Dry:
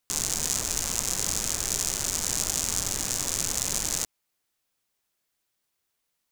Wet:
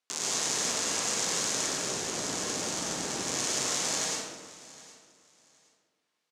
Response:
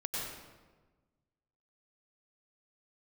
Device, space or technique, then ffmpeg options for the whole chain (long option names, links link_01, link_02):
supermarket ceiling speaker: -filter_complex "[0:a]asettb=1/sr,asplit=3[link_01][link_02][link_03];[link_01]atrim=end=1.664[link_04];[link_02]atrim=start=1.66:end=3.25,asetpts=PTS-STARTPTS,afade=type=in:duration=0.004:curve=qsin,afade=type=out:start_time=1.586:duration=0.004:curve=qsin,tiltshelf=frequency=660:gain=4.5[link_05];[link_03]atrim=start=3.246[link_06];[link_04][link_05]acrossfade=duration=0.004:curve1=hsin:curve2=qsin[link_07];[link_07][link_06]acrossfade=duration=0.004:curve1=qsin:curve2=hsin,highpass=280,lowpass=6300,aecho=1:1:766|1532:0.106|0.0233[link_08];[1:a]atrim=start_sample=2205[link_09];[link_08][link_09]afir=irnorm=-1:irlink=0"